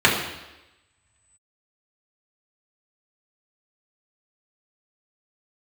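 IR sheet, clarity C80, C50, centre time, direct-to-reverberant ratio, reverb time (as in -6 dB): 7.0 dB, 5.0 dB, 41 ms, -5.0 dB, 1.0 s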